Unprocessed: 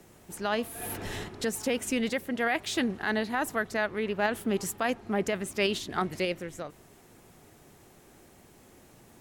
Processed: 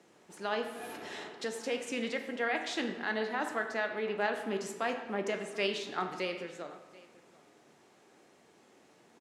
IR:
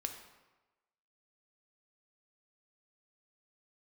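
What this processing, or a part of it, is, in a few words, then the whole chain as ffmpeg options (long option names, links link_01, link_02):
supermarket ceiling speaker: -filter_complex "[0:a]asettb=1/sr,asplit=3[link_01][link_02][link_03];[link_01]atrim=end=1.024[link_04];[link_02]atrim=start=1.02:end=1.75,asetpts=PTS-STARTPTS,afade=type=in:duration=0.004:curve=qsin,afade=type=out:start_time=0.726:duration=0.004:curve=qsin,lowshelf=frequency=110:gain=-11.5[link_05];[link_03]atrim=start=1.746[link_06];[link_04][link_05]acrossfade=duration=0.004:curve1=hsin:curve2=qsin[link_07];[link_07][link_06]acrossfade=duration=0.004:curve1=qsin:curve2=hsin,highpass=260,lowpass=6300[link_08];[1:a]atrim=start_sample=2205[link_09];[link_08][link_09]afir=irnorm=-1:irlink=0,aecho=1:1:734:0.0794,volume=-3dB"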